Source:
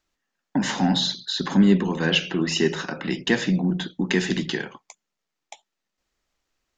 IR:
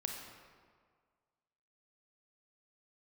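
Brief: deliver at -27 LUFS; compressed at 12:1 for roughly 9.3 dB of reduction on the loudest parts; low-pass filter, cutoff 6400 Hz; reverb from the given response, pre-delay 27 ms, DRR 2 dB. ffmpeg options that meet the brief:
-filter_complex "[0:a]lowpass=6.4k,acompressor=threshold=-21dB:ratio=12,asplit=2[a][b];[1:a]atrim=start_sample=2205,adelay=27[c];[b][c]afir=irnorm=-1:irlink=0,volume=-2.5dB[d];[a][d]amix=inputs=2:normalize=0,volume=-2dB"

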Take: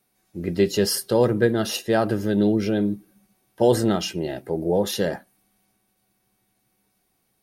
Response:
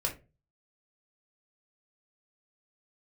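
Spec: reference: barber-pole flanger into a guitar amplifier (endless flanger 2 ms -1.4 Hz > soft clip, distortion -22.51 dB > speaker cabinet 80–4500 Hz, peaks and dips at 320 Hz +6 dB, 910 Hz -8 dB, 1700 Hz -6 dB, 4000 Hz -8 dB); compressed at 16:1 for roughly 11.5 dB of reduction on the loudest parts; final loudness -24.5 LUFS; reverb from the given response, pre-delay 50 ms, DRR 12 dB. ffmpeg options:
-filter_complex "[0:a]acompressor=threshold=-24dB:ratio=16,asplit=2[a][b];[1:a]atrim=start_sample=2205,adelay=50[c];[b][c]afir=irnorm=-1:irlink=0,volume=-16.5dB[d];[a][d]amix=inputs=2:normalize=0,asplit=2[e][f];[f]adelay=2,afreqshift=-1.4[g];[e][g]amix=inputs=2:normalize=1,asoftclip=threshold=-20.5dB,highpass=80,equalizer=f=320:t=q:w=4:g=6,equalizer=f=910:t=q:w=4:g=-8,equalizer=f=1.7k:t=q:w=4:g=-6,equalizer=f=4k:t=q:w=4:g=-8,lowpass=f=4.5k:w=0.5412,lowpass=f=4.5k:w=1.3066,volume=8dB"

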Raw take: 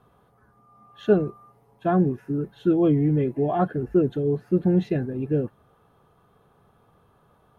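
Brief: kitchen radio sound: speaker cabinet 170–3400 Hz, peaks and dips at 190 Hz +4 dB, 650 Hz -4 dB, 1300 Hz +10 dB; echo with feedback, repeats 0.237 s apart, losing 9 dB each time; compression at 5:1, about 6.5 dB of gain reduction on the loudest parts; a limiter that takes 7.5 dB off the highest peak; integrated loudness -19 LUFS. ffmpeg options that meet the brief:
-af "acompressor=threshold=-21dB:ratio=5,alimiter=limit=-21dB:level=0:latency=1,highpass=170,equalizer=f=190:t=q:w=4:g=4,equalizer=f=650:t=q:w=4:g=-4,equalizer=f=1.3k:t=q:w=4:g=10,lowpass=f=3.4k:w=0.5412,lowpass=f=3.4k:w=1.3066,aecho=1:1:237|474|711|948:0.355|0.124|0.0435|0.0152,volume=11.5dB"

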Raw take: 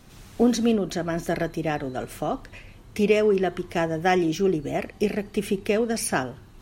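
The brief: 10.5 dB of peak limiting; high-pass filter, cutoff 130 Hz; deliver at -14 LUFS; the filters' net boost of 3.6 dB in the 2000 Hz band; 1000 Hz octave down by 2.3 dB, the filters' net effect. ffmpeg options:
-af "highpass=130,equalizer=f=1k:t=o:g=-5,equalizer=f=2k:t=o:g=6,volume=14.5dB,alimiter=limit=-3dB:level=0:latency=1"

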